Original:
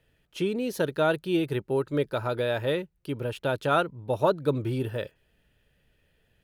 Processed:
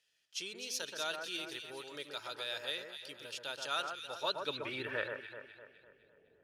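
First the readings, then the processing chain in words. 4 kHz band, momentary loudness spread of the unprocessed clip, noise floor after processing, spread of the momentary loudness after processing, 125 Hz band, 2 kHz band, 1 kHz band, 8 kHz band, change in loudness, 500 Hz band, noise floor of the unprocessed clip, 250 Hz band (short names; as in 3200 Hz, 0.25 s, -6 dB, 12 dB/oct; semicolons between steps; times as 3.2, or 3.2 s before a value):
+1.0 dB, 8 LU, -71 dBFS, 10 LU, -26.5 dB, -5.5 dB, -11.5 dB, n/a, -11.5 dB, -17.0 dB, -70 dBFS, -21.5 dB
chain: band-pass sweep 5600 Hz -> 440 Hz, 4.06–5.84; echo with dull and thin repeats by turns 0.127 s, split 1900 Hz, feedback 67%, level -4.5 dB; gain +8 dB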